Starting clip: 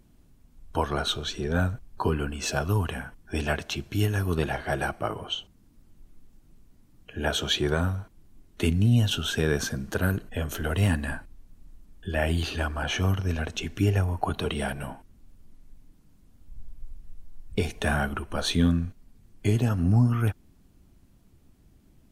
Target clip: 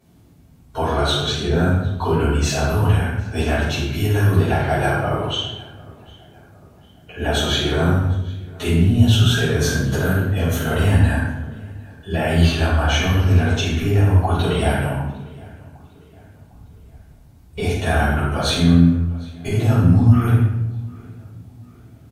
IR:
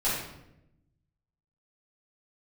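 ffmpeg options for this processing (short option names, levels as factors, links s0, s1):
-filter_complex "[0:a]highpass=f=61:w=0.5412,highpass=f=61:w=1.3066,alimiter=limit=0.112:level=0:latency=1:release=78,asplit=2[s0][s1];[s1]adelay=754,lowpass=f=4200:p=1,volume=0.0708,asplit=2[s2][s3];[s3]adelay=754,lowpass=f=4200:p=1,volume=0.48,asplit=2[s4][s5];[s5]adelay=754,lowpass=f=4200:p=1,volume=0.48[s6];[s0][s2][s4][s6]amix=inputs=4:normalize=0[s7];[1:a]atrim=start_sample=2205,asetrate=38367,aresample=44100[s8];[s7][s8]afir=irnorm=-1:irlink=0,volume=0.891"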